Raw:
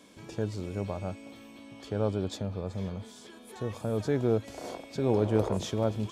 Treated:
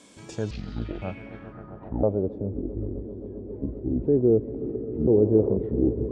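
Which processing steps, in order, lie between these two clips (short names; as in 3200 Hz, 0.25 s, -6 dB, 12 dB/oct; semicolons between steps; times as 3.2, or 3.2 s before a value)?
trilling pitch shifter -10 st, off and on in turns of 0.507 s; swelling echo 0.132 s, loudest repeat 5, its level -18 dB; low-pass sweep 8500 Hz -> 390 Hz, 0.26–2.41; gain +2 dB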